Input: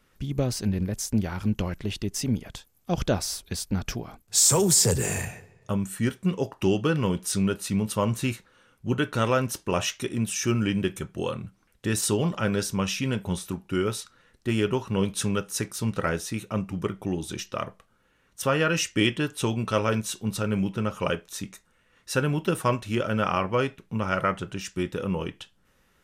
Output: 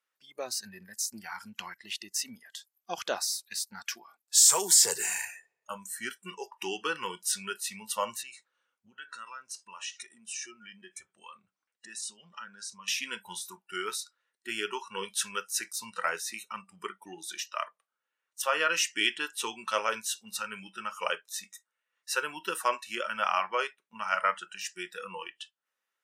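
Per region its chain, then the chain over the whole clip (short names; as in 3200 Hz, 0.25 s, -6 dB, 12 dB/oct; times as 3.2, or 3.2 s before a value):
8.22–12.88 LPF 9500 Hz 24 dB/oct + compressor 4:1, threshold -35 dBFS + low shelf 220 Hz +7.5 dB
whole clip: spectral noise reduction 18 dB; HPF 760 Hz 12 dB/oct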